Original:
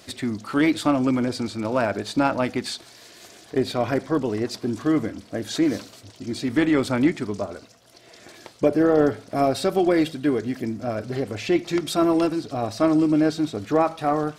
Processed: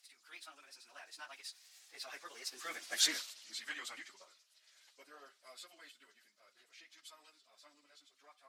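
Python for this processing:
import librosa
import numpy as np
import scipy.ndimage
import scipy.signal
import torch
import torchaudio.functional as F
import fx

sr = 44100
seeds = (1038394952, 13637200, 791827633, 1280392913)

y = fx.doppler_pass(x, sr, speed_mps=26, closest_m=7.3, pass_at_s=5.04)
y = scipy.signal.sosfilt(scipy.signal.butter(2, 1400.0, 'highpass', fs=sr, output='sos'), y)
y = fx.cheby_harmonics(y, sr, harmonics=(3, 4, 7), levels_db=(-33, -36, -38), full_scale_db=-20.5)
y = fx.high_shelf(y, sr, hz=2300.0, db=8.0)
y = fx.stretch_vocoder_free(y, sr, factor=0.59)
y = y * librosa.db_to_amplitude(3.0)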